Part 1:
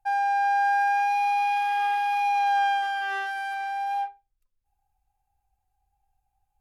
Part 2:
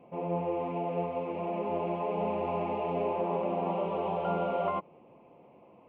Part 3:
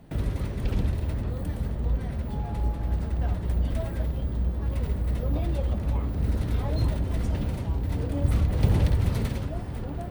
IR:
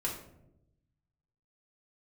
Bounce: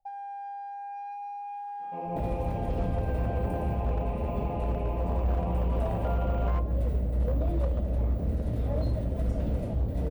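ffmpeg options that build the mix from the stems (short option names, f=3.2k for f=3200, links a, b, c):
-filter_complex "[0:a]acompressor=threshold=-36dB:ratio=3,volume=-7.5dB,asplit=2[a][b];[b]volume=-11dB[c];[1:a]adelay=1800,volume=-7.5dB,asplit=2[d][e];[e]volume=-8.5dB[f];[2:a]alimiter=limit=-18.5dB:level=0:latency=1:release=376,adelay=2050,volume=-2dB,asplit=2[g][h];[h]volume=-8.5dB[i];[a][g]amix=inputs=2:normalize=0,lowpass=f=640:t=q:w=4.9,acompressor=threshold=-34dB:ratio=2,volume=0dB[j];[3:a]atrim=start_sample=2205[k];[c][f][i]amix=inputs=3:normalize=0[l];[l][k]afir=irnorm=-1:irlink=0[m];[d][j][m]amix=inputs=3:normalize=0,volume=21.5dB,asoftclip=hard,volume=-21.5dB"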